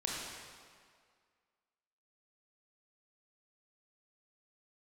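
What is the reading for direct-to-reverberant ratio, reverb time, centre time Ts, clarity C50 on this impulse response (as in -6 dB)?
-4.0 dB, 2.0 s, 0.114 s, -1.5 dB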